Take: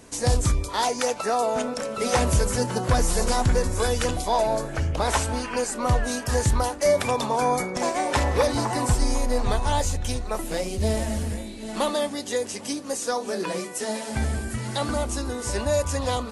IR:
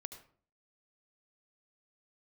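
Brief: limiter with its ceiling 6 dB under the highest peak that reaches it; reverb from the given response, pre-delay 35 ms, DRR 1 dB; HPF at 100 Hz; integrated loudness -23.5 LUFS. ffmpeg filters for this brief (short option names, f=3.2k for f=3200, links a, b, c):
-filter_complex "[0:a]highpass=100,alimiter=limit=-16dB:level=0:latency=1,asplit=2[a][b];[1:a]atrim=start_sample=2205,adelay=35[c];[b][c]afir=irnorm=-1:irlink=0,volume=3dB[d];[a][d]amix=inputs=2:normalize=0,volume=1.5dB"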